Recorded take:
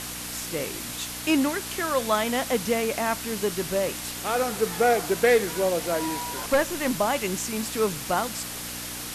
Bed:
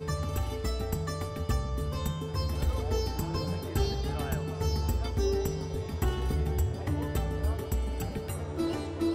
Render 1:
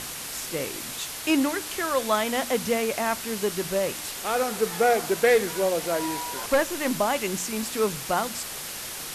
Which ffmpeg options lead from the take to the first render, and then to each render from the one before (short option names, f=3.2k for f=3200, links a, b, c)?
-af "bandreject=f=60:t=h:w=4,bandreject=f=120:t=h:w=4,bandreject=f=180:t=h:w=4,bandreject=f=240:t=h:w=4,bandreject=f=300:t=h:w=4"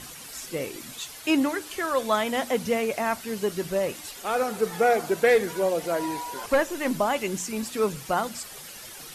-af "afftdn=nr=10:nf=-36"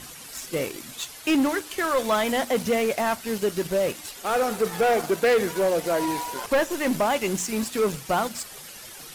-filter_complex "[0:a]asplit=2[a][b];[b]acrusher=bits=4:mix=0:aa=0.5,volume=-4dB[c];[a][c]amix=inputs=2:normalize=0,asoftclip=type=tanh:threshold=-15.5dB"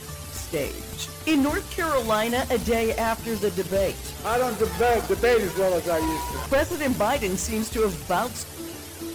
-filter_complex "[1:a]volume=-6.5dB[a];[0:a][a]amix=inputs=2:normalize=0"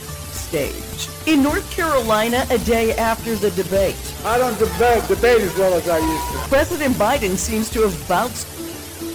-af "volume=6dB"